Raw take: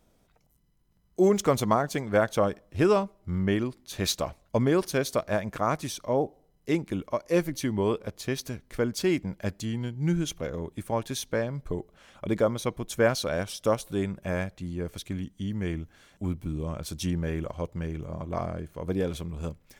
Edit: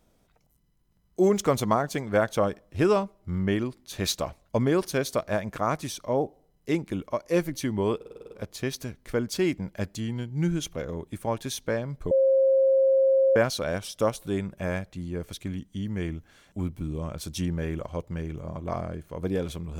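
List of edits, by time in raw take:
7.96 s: stutter 0.05 s, 8 plays
11.76–13.01 s: bleep 535 Hz -17 dBFS

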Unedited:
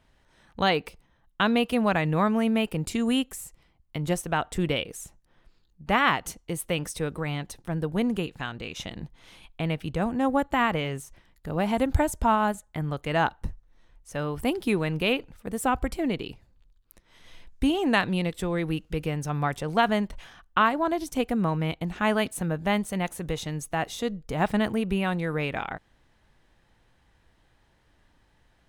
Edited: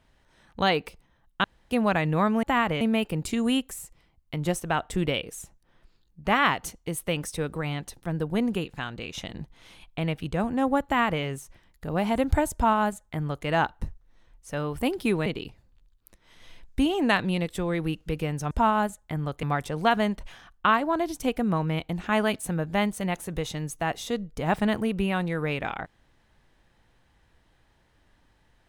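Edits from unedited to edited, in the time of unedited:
1.44–1.71 s: room tone
10.47–10.85 s: copy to 2.43 s
12.16–13.08 s: copy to 19.35 s
14.88–16.10 s: delete

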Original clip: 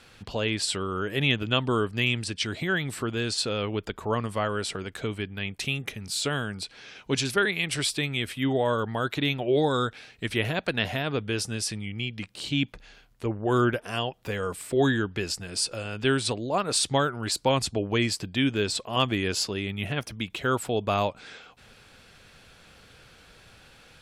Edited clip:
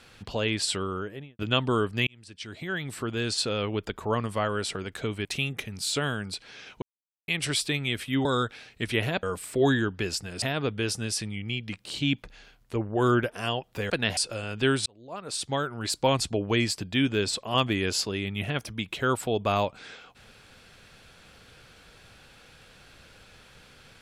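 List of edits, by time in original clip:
0.79–1.39 s: studio fade out
2.07–3.29 s: fade in
5.25–5.54 s: delete
7.11–7.57 s: mute
8.54–9.67 s: delete
10.65–10.92 s: swap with 14.40–15.59 s
16.28–17.49 s: fade in

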